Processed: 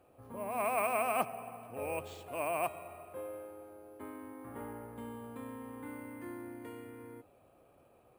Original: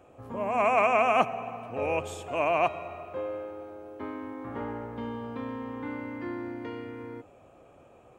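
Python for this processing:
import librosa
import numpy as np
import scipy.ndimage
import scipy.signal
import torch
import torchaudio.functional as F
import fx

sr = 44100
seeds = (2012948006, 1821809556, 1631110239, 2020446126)

y = np.repeat(x[::4], 4)[:len(x)]
y = F.gain(torch.from_numpy(y), -9.0).numpy()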